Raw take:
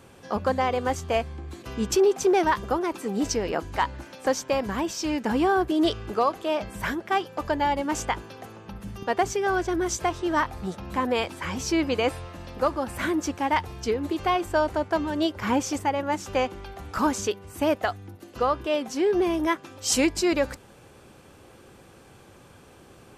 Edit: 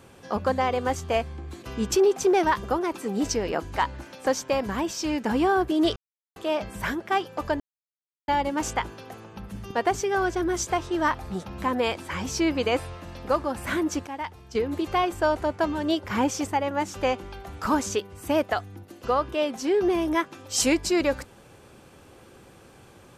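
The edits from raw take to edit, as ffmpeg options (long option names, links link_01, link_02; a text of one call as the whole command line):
ffmpeg -i in.wav -filter_complex "[0:a]asplit=6[link_01][link_02][link_03][link_04][link_05][link_06];[link_01]atrim=end=5.96,asetpts=PTS-STARTPTS,afade=type=out:start_time=5.956:duration=0.004:curve=hsin[link_07];[link_02]atrim=start=5.96:end=6.36,asetpts=PTS-STARTPTS,volume=0[link_08];[link_03]atrim=start=6.36:end=7.6,asetpts=PTS-STARTPTS,afade=type=in:duration=0.004:curve=hsin,afade=type=out:start_time=1.236:duration=0.004:curve=hsin,apad=pad_dur=0.68[link_09];[link_04]atrim=start=7.6:end=13.392,asetpts=PTS-STARTPTS,afade=type=in:duration=0.004:curve=hsin[link_10];[link_05]atrim=start=13.388:end=13.872,asetpts=PTS-STARTPTS,volume=-9.5dB[link_11];[link_06]atrim=start=13.868[link_12];[link_07][link_08][link_09][link_10]concat=n=4:v=0:a=1[link_13];[link_13][link_11]acrossfade=duration=0.004:curve1=hsin:curve2=hsin[link_14];[link_14][link_12]acrossfade=duration=0.004:curve1=hsin:curve2=hsin" out.wav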